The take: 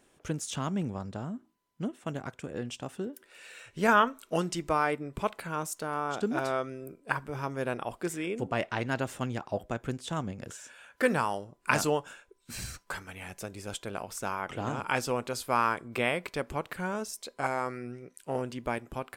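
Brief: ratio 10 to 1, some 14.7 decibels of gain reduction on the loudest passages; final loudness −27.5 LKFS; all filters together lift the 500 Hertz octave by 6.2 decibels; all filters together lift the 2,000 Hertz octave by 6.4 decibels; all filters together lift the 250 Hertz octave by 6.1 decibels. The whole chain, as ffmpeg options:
ffmpeg -i in.wav -af "equalizer=frequency=250:width_type=o:gain=6,equalizer=frequency=500:width_type=o:gain=5.5,equalizer=frequency=2000:width_type=o:gain=8.5,acompressor=threshold=-28dB:ratio=10,volume=7.5dB" out.wav

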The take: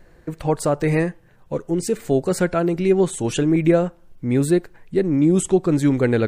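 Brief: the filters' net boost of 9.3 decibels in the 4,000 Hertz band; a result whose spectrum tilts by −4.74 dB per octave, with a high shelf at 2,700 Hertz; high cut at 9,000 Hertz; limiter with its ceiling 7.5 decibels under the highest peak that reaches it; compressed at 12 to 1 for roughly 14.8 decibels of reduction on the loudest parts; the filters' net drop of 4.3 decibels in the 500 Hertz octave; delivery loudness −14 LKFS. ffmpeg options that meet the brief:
ffmpeg -i in.wav -af "lowpass=9000,equalizer=frequency=500:width_type=o:gain=-6.5,highshelf=frequency=2700:gain=8,equalizer=frequency=4000:width_type=o:gain=5.5,acompressor=threshold=-29dB:ratio=12,volume=22dB,alimiter=limit=-4dB:level=0:latency=1" out.wav

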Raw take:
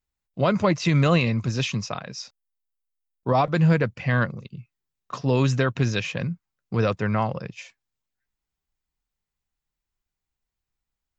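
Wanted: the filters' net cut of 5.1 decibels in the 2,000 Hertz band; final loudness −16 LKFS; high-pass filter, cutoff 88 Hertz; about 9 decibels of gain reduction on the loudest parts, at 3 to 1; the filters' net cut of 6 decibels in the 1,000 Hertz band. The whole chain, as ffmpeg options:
ffmpeg -i in.wav -af "highpass=88,equalizer=frequency=1000:width_type=o:gain=-7,equalizer=frequency=2000:width_type=o:gain=-4.5,acompressor=threshold=-28dB:ratio=3,volume=16dB" out.wav

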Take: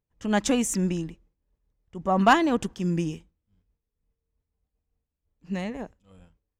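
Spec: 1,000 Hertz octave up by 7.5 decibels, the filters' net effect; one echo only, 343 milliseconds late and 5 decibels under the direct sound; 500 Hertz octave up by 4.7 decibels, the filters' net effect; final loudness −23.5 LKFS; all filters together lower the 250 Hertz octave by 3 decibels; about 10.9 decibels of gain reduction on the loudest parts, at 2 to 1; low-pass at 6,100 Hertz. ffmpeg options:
ffmpeg -i in.wav -af "lowpass=6100,equalizer=frequency=250:width_type=o:gain=-6,equalizer=frequency=500:width_type=o:gain=4.5,equalizer=frequency=1000:width_type=o:gain=8.5,acompressor=threshold=-27dB:ratio=2,aecho=1:1:343:0.562,volume=6dB" out.wav

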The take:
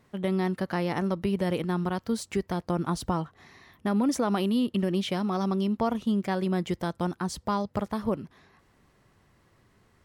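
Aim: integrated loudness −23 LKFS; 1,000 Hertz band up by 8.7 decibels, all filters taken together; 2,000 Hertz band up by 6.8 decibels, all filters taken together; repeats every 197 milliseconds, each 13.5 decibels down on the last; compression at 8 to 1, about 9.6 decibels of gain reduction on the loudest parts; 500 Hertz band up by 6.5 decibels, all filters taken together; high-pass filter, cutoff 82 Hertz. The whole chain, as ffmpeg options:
ffmpeg -i in.wav -af "highpass=82,equalizer=frequency=500:width_type=o:gain=6.5,equalizer=frequency=1000:width_type=o:gain=7.5,equalizer=frequency=2000:width_type=o:gain=5.5,acompressor=threshold=-25dB:ratio=8,aecho=1:1:197|394:0.211|0.0444,volume=7.5dB" out.wav

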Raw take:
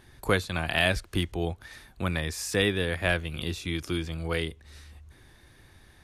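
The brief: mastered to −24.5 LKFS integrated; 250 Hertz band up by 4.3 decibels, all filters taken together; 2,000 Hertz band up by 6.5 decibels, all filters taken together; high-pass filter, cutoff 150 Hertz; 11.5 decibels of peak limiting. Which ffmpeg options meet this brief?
ffmpeg -i in.wav -af "highpass=150,equalizer=frequency=250:width_type=o:gain=7.5,equalizer=frequency=2000:width_type=o:gain=8,volume=4.5dB,alimiter=limit=-11.5dB:level=0:latency=1" out.wav

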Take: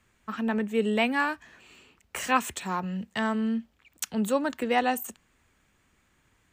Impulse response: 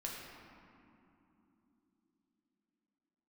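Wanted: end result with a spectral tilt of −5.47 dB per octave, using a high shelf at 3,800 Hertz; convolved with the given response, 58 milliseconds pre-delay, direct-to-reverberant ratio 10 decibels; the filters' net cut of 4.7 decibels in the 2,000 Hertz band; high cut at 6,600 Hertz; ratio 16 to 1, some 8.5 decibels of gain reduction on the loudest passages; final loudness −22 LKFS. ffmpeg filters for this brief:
-filter_complex "[0:a]lowpass=6600,equalizer=frequency=2000:width_type=o:gain=-4.5,highshelf=frequency=3800:gain=-6,acompressor=threshold=-28dB:ratio=16,asplit=2[link_01][link_02];[1:a]atrim=start_sample=2205,adelay=58[link_03];[link_02][link_03]afir=irnorm=-1:irlink=0,volume=-10dB[link_04];[link_01][link_04]amix=inputs=2:normalize=0,volume=12.5dB"

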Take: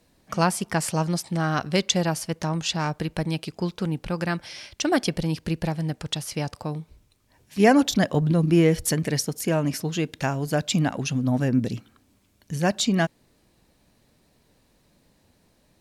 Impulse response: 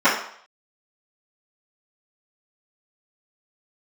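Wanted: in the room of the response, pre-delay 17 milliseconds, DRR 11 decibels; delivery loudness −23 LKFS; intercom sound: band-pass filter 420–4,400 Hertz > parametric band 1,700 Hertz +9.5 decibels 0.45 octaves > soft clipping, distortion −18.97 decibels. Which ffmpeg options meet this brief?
-filter_complex "[0:a]asplit=2[link_01][link_02];[1:a]atrim=start_sample=2205,adelay=17[link_03];[link_02][link_03]afir=irnorm=-1:irlink=0,volume=-34dB[link_04];[link_01][link_04]amix=inputs=2:normalize=0,highpass=420,lowpass=4400,equalizer=frequency=1700:width_type=o:width=0.45:gain=9.5,asoftclip=threshold=-9.5dB,volume=4.5dB"

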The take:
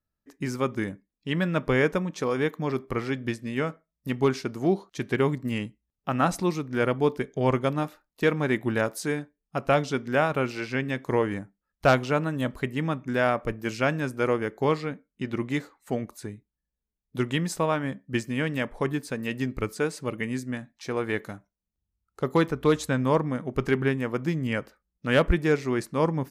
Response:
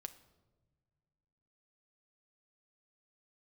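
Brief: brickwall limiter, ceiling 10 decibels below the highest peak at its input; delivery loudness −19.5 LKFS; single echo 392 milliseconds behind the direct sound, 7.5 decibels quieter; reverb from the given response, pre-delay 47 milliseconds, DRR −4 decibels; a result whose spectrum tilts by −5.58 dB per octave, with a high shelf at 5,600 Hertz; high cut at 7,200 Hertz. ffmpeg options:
-filter_complex "[0:a]lowpass=7200,highshelf=frequency=5600:gain=6.5,alimiter=limit=-18.5dB:level=0:latency=1,aecho=1:1:392:0.422,asplit=2[link_01][link_02];[1:a]atrim=start_sample=2205,adelay=47[link_03];[link_02][link_03]afir=irnorm=-1:irlink=0,volume=8.5dB[link_04];[link_01][link_04]amix=inputs=2:normalize=0,volume=5.5dB"

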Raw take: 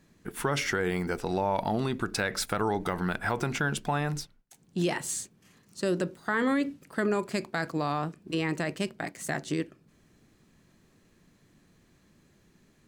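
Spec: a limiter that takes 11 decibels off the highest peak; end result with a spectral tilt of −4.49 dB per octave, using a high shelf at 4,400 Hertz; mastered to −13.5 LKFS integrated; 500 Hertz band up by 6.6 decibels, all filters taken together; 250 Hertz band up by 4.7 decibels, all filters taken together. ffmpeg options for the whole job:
ffmpeg -i in.wav -af "equalizer=frequency=250:width_type=o:gain=4,equalizer=frequency=500:width_type=o:gain=7,highshelf=frequency=4400:gain=4.5,volume=18.5dB,alimiter=limit=-2.5dB:level=0:latency=1" out.wav

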